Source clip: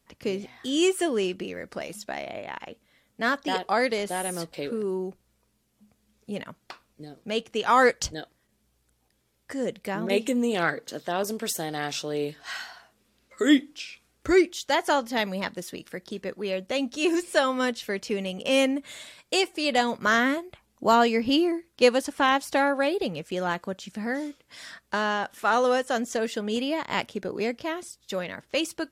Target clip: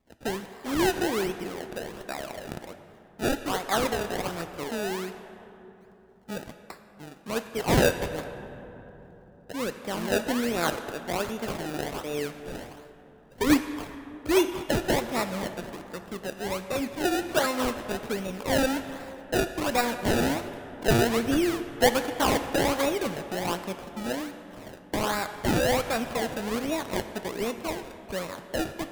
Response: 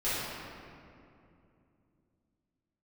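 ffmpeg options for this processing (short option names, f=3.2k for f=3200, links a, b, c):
-filter_complex "[0:a]acrusher=samples=28:mix=1:aa=0.000001:lfo=1:lforange=28:lforate=1.3,asplit=2[a][b];[1:a]atrim=start_sample=2205,asetrate=29547,aresample=44100,lowshelf=f=490:g=-8.5[c];[b][c]afir=irnorm=-1:irlink=0,volume=-18.5dB[d];[a][d]amix=inputs=2:normalize=0,volume=-2.5dB"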